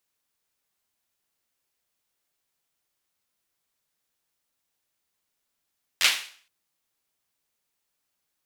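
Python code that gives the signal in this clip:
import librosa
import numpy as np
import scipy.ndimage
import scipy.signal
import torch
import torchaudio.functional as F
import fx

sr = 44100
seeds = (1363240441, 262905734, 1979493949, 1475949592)

y = fx.drum_clap(sr, seeds[0], length_s=0.47, bursts=4, spacing_ms=11, hz=2700.0, decay_s=0.47)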